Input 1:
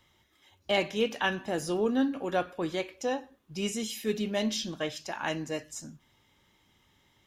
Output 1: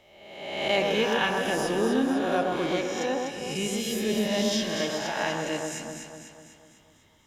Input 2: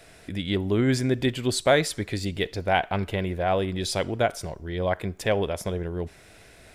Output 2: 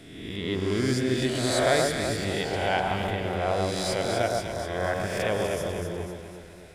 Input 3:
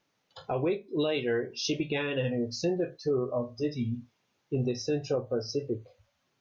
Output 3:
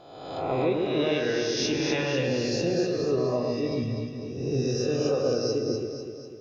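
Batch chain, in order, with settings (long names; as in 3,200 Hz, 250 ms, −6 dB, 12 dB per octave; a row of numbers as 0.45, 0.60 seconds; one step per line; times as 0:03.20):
peak hold with a rise ahead of every peak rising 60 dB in 1.17 s
delay that swaps between a low-pass and a high-pass 124 ms, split 1,600 Hz, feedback 72%, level −2.5 dB
loudness normalisation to −27 LKFS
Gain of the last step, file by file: −1.0, −6.5, −0.5 decibels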